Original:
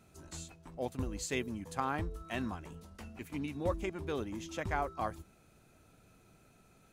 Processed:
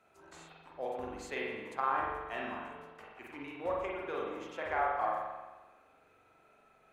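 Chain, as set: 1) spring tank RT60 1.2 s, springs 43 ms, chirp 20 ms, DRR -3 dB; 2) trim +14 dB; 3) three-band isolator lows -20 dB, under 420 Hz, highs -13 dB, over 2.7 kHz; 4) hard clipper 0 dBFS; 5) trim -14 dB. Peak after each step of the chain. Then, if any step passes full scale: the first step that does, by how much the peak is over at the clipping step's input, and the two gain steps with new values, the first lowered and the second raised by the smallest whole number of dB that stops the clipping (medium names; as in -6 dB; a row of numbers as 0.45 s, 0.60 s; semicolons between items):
-17.5 dBFS, -3.5 dBFS, -4.5 dBFS, -4.5 dBFS, -18.5 dBFS; nothing clips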